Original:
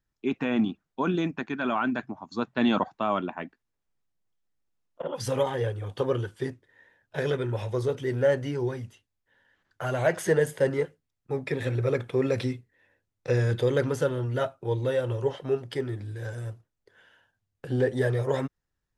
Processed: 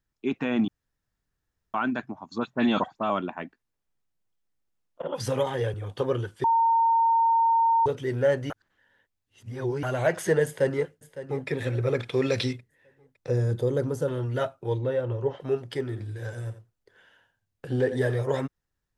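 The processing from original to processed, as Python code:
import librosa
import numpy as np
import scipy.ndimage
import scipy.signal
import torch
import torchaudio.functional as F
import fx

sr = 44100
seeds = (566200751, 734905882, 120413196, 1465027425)

y = fx.dispersion(x, sr, late='highs', ms=54.0, hz=3000.0, at=(2.38, 3.1))
y = fx.band_squash(y, sr, depth_pct=40, at=(5.12, 5.74))
y = fx.echo_throw(y, sr, start_s=10.45, length_s=1.03, ms=560, feedback_pct=40, wet_db=-14.0)
y = fx.peak_eq(y, sr, hz=4200.0, db=10.5, octaves=1.7, at=(11.99, 12.53))
y = fx.peak_eq(y, sr, hz=2400.0, db=-13.5, octaves=2.1, at=(13.28, 14.08))
y = fx.lowpass(y, sr, hz=1400.0, slope=6, at=(14.77, 15.39), fade=0.02)
y = fx.echo_single(y, sr, ms=86, db=-12.0, at=(15.89, 18.14), fade=0.02)
y = fx.edit(y, sr, fx.room_tone_fill(start_s=0.68, length_s=1.06),
    fx.bleep(start_s=6.44, length_s=1.42, hz=915.0, db=-18.0),
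    fx.reverse_span(start_s=8.5, length_s=1.33), tone=tone)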